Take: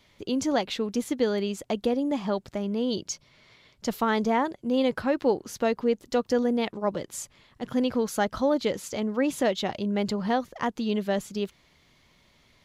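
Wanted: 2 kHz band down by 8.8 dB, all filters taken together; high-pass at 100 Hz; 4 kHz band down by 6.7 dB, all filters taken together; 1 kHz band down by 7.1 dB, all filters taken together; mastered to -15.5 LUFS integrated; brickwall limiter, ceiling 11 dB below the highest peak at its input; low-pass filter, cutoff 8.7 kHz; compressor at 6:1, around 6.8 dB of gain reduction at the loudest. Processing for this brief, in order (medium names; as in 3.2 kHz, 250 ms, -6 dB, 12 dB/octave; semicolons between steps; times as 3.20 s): high-pass 100 Hz; low-pass 8.7 kHz; peaking EQ 1 kHz -8.5 dB; peaking EQ 2 kHz -7 dB; peaking EQ 4 kHz -5.5 dB; compression 6:1, threshold -28 dBFS; trim +23 dB; peak limiter -6.5 dBFS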